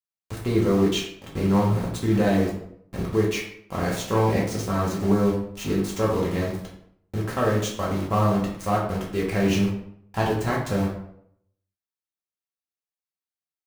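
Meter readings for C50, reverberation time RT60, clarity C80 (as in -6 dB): 4.5 dB, 0.70 s, 8.0 dB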